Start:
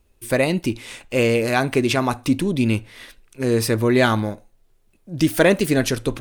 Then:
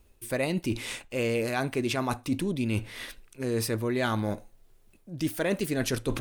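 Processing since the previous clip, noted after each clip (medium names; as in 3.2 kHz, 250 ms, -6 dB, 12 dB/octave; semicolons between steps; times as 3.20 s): treble shelf 11 kHz +3.5 dB; reverse; compression 4:1, threshold -28 dBFS, peak gain reduction 15 dB; reverse; trim +1 dB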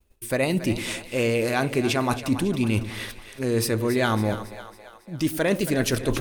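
expander -52 dBFS; two-band feedback delay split 480 Hz, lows 101 ms, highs 276 ms, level -12 dB; trim +5 dB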